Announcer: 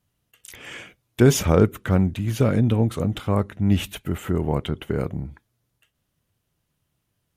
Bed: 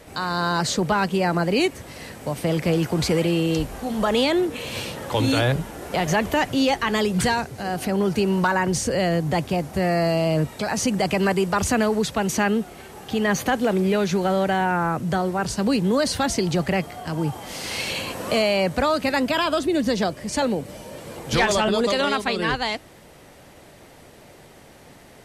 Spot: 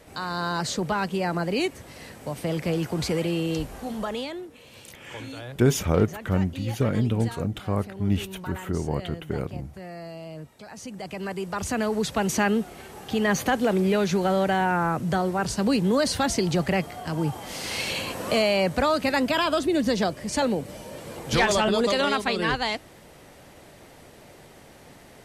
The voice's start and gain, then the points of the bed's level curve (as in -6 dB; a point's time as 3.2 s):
4.40 s, -4.5 dB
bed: 3.89 s -5 dB
4.49 s -18 dB
10.69 s -18 dB
12.17 s -1.5 dB